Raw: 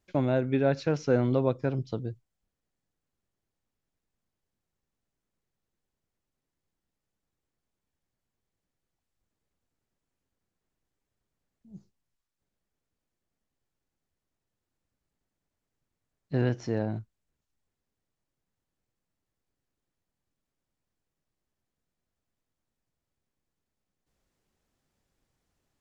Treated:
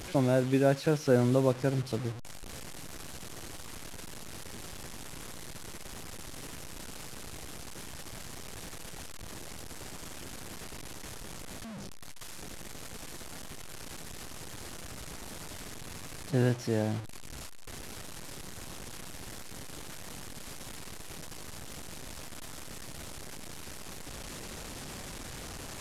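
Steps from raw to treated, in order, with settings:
linear delta modulator 64 kbit/s, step −36 dBFS

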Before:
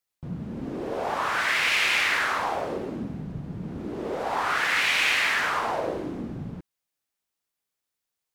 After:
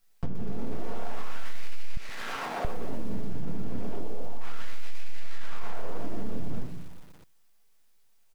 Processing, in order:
half-wave rectification
0:03.96–0:04.41: Bessel low-pass filter 640 Hz, order 6
rectangular room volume 180 cubic metres, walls furnished, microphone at 1.6 metres
soft clipping −16.5 dBFS, distortion −12 dB
brickwall limiter −24.5 dBFS, peak gain reduction 8 dB
0:01.97–0:02.65: high-pass filter 220 Hz
slap from a distant wall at 66 metres, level −30 dB
downward compressor 2.5 to 1, threshold −40 dBFS, peak gain reduction 9.5 dB
feedback echo at a low word length 121 ms, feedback 55%, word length 9 bits, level −15 dB
level +13.5 dB

